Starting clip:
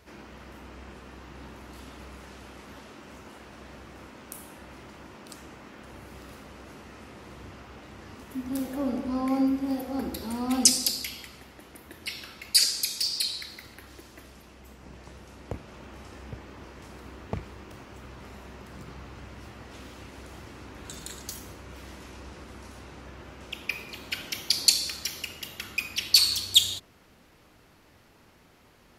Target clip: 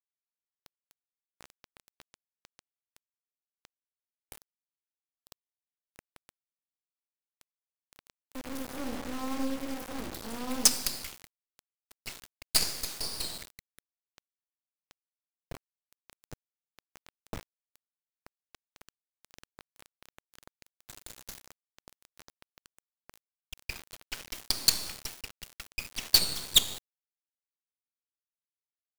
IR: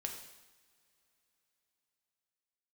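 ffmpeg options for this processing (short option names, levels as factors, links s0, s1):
-filter_complex "[0:a]asplit=2[s0][s1];[s1]adelay=932.9,volume=0.0501,highshelf=f=4000:g=-21[s2];[s0][s2]amix=inputs=2:normalize=0,acrusher=bits=3:dc=4:mix=0:aa=0.000001,volume=0.668"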